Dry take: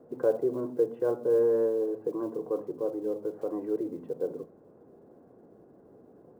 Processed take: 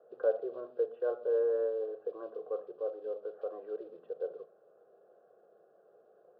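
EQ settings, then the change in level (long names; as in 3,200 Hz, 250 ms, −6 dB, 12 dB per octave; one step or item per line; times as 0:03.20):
high-pass filter 520 Hz 12 dB per octave
high-frequency loss of the air 220 metres
phaser with its sweep stopped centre 1,400 Hz, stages 8
+1.0 dB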